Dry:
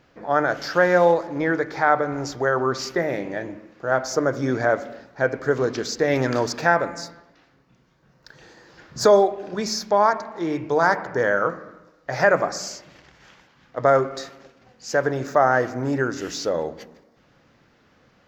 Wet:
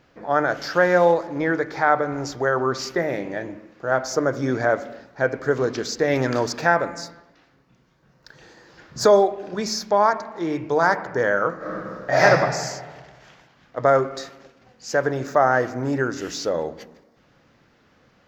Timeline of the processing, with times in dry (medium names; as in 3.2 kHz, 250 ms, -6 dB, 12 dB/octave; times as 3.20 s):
11.57–12.22 s: reverb throw, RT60 1.6 s, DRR -12 dB